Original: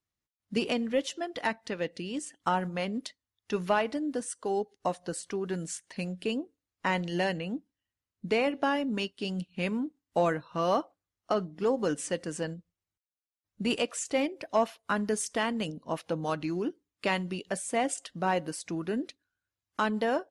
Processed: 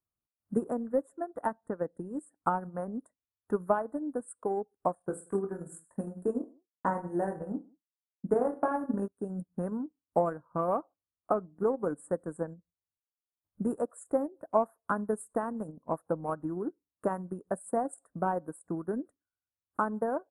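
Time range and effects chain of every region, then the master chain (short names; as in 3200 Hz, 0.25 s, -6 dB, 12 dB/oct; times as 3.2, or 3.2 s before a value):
4.95–9.08 expander -49 dBFS + reverse bouncing-ball echo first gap 20 ms, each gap 1.3×, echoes 5
whole clip: inverse Chebyshev band-stop 2200–6000 Hz, stop band 40 dB; transient shaper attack +6 dB, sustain -7 dB; gain -4 dB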